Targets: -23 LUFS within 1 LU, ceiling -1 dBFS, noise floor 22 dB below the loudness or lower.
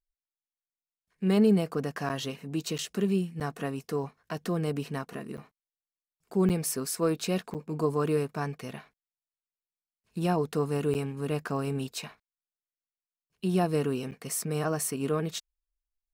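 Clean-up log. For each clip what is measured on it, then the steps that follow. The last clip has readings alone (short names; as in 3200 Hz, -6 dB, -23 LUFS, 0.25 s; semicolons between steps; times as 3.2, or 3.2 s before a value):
dropouts 8; longest dropout 8.2 ms; loudness -30.0 LUFS; peak -13.5 dBFS; loudness target -23.0 LUFS
-> interpolate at 2.09/2.78/3.4/5.37/6.49/7.54/10.94/14.11, 8.2 ms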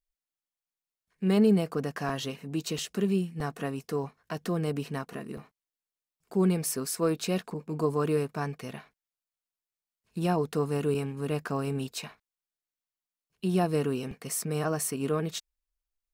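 dropouts 0; loudness -30.0 LUFS; peak -13.5 dBFS; loudness target -23.0 LUFS
-> gain +7 dB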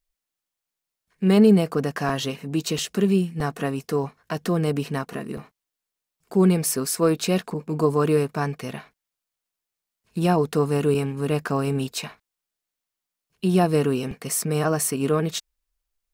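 loudness -23.0 LUFS; peak -6.5 dBFS; noise floor -86 dBFS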